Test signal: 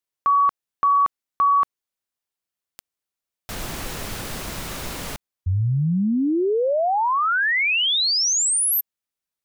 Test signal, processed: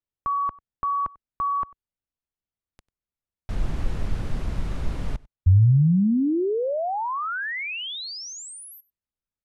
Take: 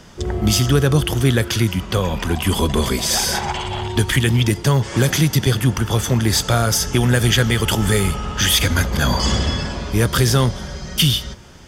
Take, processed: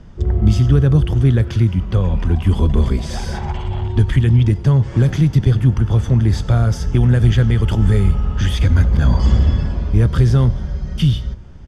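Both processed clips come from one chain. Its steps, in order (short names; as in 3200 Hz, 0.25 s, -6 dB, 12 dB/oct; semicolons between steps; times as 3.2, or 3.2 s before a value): LPF 12000 Hz 24 dB/oct; RIAA curve playback; on a send: echo 95 ms -23.5 dB; on the sum: gain -7 dB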